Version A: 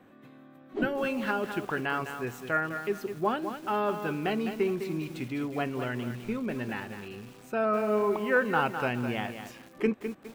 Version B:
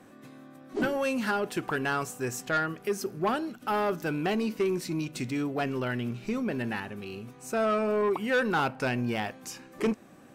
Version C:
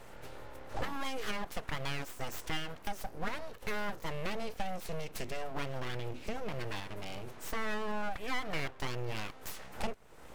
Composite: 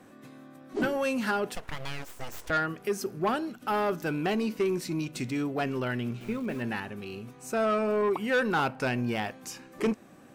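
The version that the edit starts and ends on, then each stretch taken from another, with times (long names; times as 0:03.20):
B
0:01.55–0:02.50: punch in from C
0:06.21–0:06.62: punch in from A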